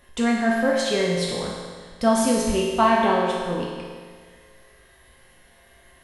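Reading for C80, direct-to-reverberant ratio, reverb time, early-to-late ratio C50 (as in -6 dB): 2.0 dB, -4.5 dB, 1.7 s, 0.0 dB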